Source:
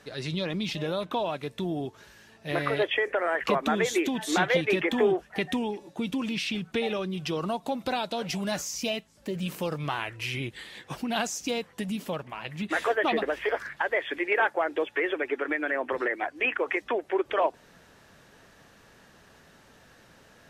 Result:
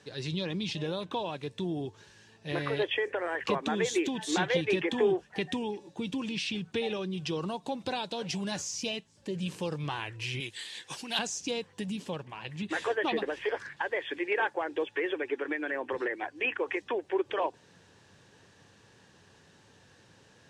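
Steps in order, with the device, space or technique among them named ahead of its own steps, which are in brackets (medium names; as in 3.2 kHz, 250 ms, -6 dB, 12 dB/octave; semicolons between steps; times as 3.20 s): car door speaker (cabinet simulation 90–9100 Hz, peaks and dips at 100 Hz +8 dB, 240 Hz -4 dB, 650 Hz -8 dB, 1.3 kHz -8 dB, 2.1 kHz -5 dB); 10.40–11.19 s: tilt EQ +3.5 dB/octave; trim -1.5 dB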